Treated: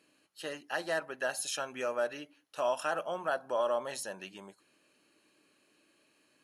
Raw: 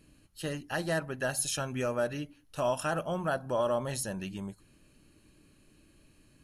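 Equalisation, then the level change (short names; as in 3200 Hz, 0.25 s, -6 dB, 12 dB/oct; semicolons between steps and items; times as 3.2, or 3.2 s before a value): HPF 460 Hz 12 dB/oct; high shelf 9000 Hz -10.5 dB; 0.0 dB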